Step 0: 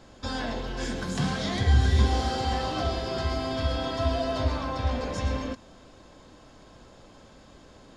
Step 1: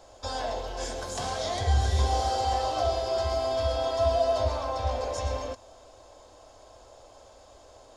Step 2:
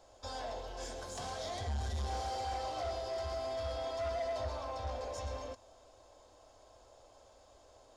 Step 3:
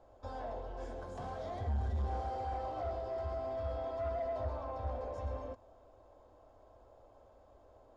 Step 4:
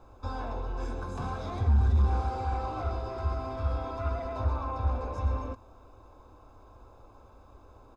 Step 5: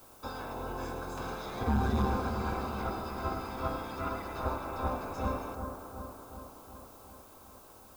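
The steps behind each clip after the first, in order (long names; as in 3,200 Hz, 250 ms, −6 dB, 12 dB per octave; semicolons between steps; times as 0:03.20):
drawn EQ curve 100 Hz 0 dB, 160 Hz −18 dB, 650 Hz +10 dB, 1,700 Hz −3 dB, 4,200 Hz +2 dB, 6,100 Hz +7 dB; level −3.5 dB
soft clipping −23.5 dBFS, distortion −13 dB; level −8.5 dB
drawn EQ curve 240 Hz 0 dB, 1,300 Hz −5 dB, 5,600 Hz −22 dB; level +2.5 dB
comb filter 0.8 ms, depth 67%; level +7.5 dB
ceiling on every frequency bin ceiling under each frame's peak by 19 dB; bucket-brigade delay 371 ms, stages 4,096, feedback 64%, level −7.5 dB; background noise blue −53 dBFS; level −5.5 dB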